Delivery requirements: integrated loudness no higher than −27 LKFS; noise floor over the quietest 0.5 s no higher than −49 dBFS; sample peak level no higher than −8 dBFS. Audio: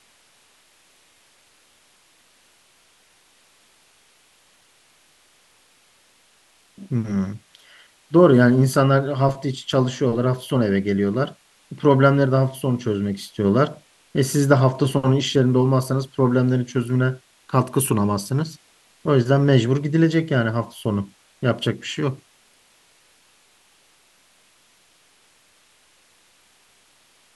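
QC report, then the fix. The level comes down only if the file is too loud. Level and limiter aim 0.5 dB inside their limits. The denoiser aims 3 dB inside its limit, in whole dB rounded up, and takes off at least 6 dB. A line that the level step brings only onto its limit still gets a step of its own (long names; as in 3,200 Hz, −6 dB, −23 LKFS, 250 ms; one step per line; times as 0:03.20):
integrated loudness −20.0 LKFS: out of spec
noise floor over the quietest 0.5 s −58 dBFS: in spec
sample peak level −2.0 dBFS: out of spec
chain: level −7.5 dB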